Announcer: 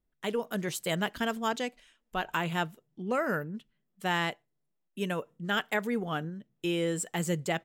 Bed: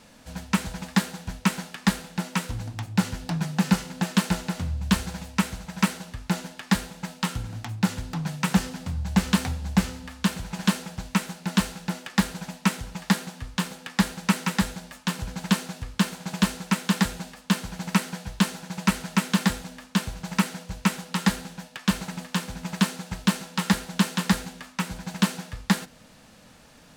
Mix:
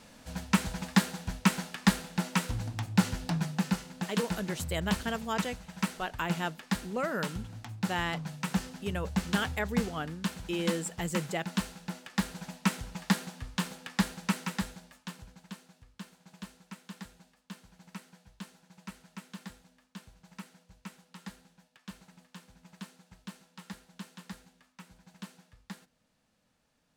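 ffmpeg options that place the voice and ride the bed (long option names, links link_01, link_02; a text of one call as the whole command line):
ffmpeg -i stem1.wav -i stem2.wav -filter_complex "[0:a]adelay=3850,volume=-3dB[link_01];[1:a]volume=2dB,afade=type=out:start_time=3.26:duration=0.44:silence=0.446684,afade=type=in:start_time=12.07:duration=0.63:silence=0.630957,afade=type=out:start_time=13.82:duration=1.62:silence=0.133352[link_02];[link_01][link_02]amix=inputs=2:normalize=0" out.wav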